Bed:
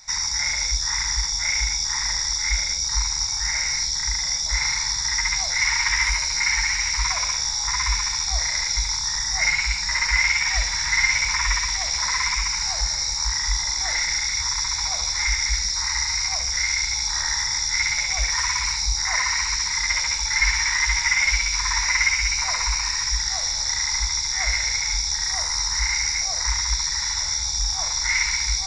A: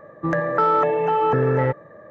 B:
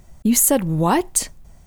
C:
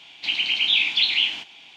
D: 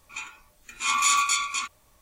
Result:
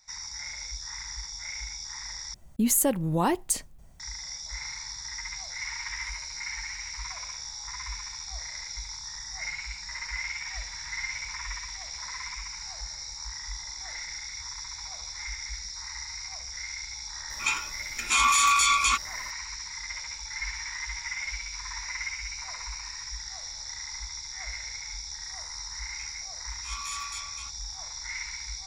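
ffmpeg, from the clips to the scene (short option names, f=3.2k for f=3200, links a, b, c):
-filter_complex "[4:a]asplit=2[a][b];[0:a]volume=-14.5dB[c];[a]alimiter=level_in=21.5dB:limit=-1dB:release=50:level=0:latency=1[d];[c]asplit=2[e][f];[e]atrim=end=2.344[g];[2:a]atrim=end=1.66,asetpts=PTS-STARTPTS,volume=-7.5dB[h];[f]atrim=start=3.996[i];[d]atrim=end=2.01,asetpts=PTS-STARTPTS,volume=-12dB,afade=t=in:d=0.004:c=hsin,afade=t=out:st=2.006:d=0.004:c=hsin,adelay=17300[j];[b]atrim=end=2.01,asetpts=PTS-STARTPTS,volume=-15.5dB,afade=t=in:d=0.004:c=hsin,afade=t=out:st=2.006:d=0.004:c=hsin,adelay=25830[k];[g][h]acrossfade=d=0.004:c1=hsin:c2=hsin[l];[l][i]acrossfade=d=0.004:c1=hsin:c2=hsin[m];[m][j][k]amix=inputs=3:normalize=0"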